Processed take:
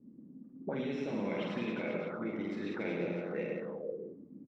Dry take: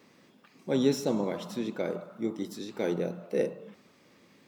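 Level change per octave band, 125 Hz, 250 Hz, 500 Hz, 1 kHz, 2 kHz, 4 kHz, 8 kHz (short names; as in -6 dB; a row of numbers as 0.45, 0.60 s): -4.5 dB, -5.0 dB, -6.0 dB, -3.0 dB, +2.0 dB, -8.0 dB, under -20 dB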